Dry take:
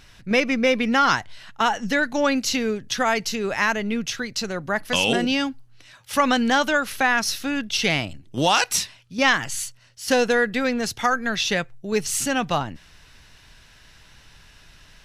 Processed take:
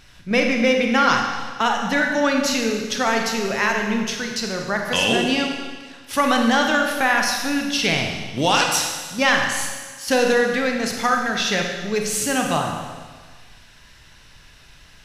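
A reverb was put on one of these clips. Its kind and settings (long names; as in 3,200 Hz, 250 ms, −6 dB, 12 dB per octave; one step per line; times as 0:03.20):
four-comb reverb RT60 1.5 s, combs from 31 ms, DRR 2 dB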